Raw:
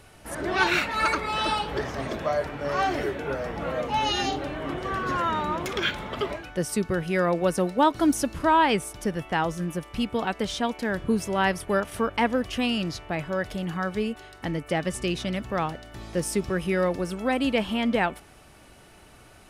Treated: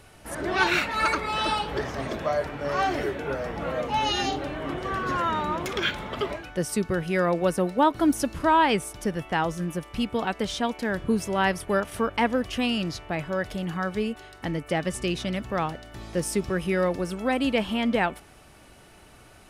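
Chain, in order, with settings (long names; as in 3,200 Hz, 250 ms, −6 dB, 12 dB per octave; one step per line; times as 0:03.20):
0:07.53–0:08.20: dynamic equaliser 6,000 Hz, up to −6 dB, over −43 dBFS, Q 0.84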